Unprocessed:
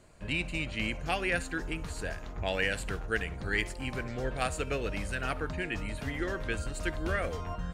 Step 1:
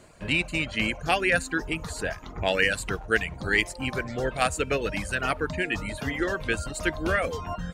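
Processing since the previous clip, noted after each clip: bass shelf 72 Hz -10 dB; reverb removal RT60 0.73 s; trim +8 dB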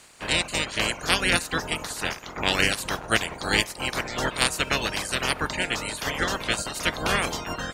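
spectral peaks clipped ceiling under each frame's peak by 24 dB; trim +1.5 dB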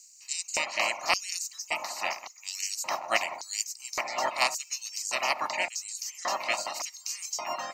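static phaser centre 2.3 kHz, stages 8; LFO high-pass square 0.88 Hz 550–6700 Hz

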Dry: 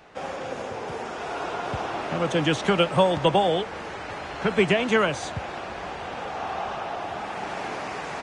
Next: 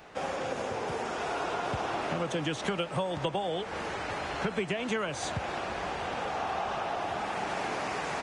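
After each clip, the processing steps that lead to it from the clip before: treble shelf 8.7 kHz +6 dB; compression 8:1, threshold -28 dBFS, peak gain reduction 13.5 dB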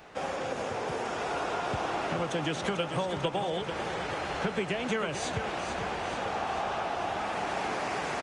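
feedback delay 444 ms, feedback 59%, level -8.5 dB

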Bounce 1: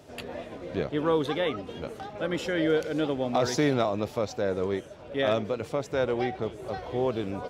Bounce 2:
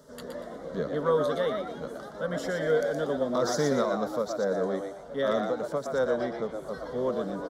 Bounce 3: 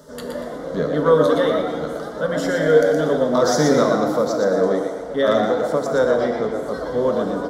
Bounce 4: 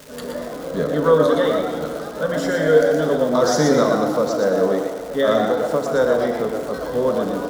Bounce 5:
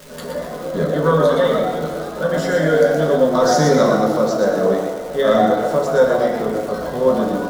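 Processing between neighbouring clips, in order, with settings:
static phaser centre 500 Hz, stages 8; frequency-shifting echo 119 ms, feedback 31%, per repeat +100 Hz, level -5.5 dB; endings held to a fixed fall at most 280 dB/s; trim +1 dB
FDN reverb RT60 1.9 s, low-frequency decay 1.05×, high-frequency decay 0.75×, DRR 5 dB; trim +8.5 dB
crackle 510 per s -30 dBFS
simulated room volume 120 m³, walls furnished, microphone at 1 m

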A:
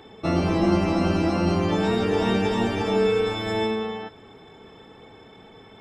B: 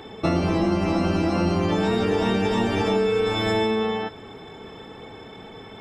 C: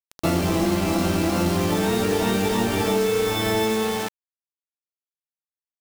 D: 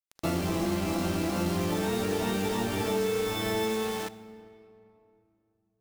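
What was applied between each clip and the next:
compression, threshold -25 dBFS, peak gain reduction 9.5 dB; trim +6.5 dB
bit crusher 5-bit
reverberation RT60 2.8 s, pre-delay 39 ms, DRR 15.5 dB; trim -7.5 dB

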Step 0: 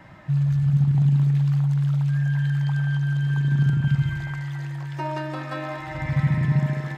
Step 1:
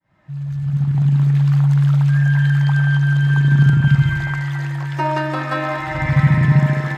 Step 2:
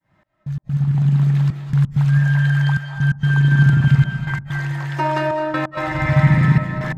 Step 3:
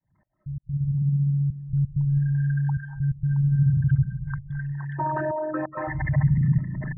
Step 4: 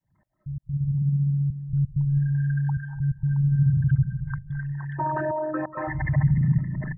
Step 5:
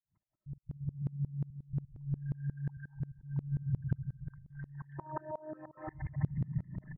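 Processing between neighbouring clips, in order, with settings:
fade-in on the opening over 1.75 s; dynamic bell 1.4 kHz, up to +4 dB, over -46 dBFS, Q 0.97; trim +7.5 dB
trance gate "xx..x.xxxxx" 130 bpm -60 dB; reverberation RT60 0.70 s, pre-delay 170 ms, DRR 6 dB
resonances exaggerated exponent 3; trim -6.5 dB
feedback delay 293 ms, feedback 30%, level -21.5 dB
distance through air 390 m; sawtooth tremolo in dB swelling 5.6 Hz, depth 27 dB; trim -6 dB

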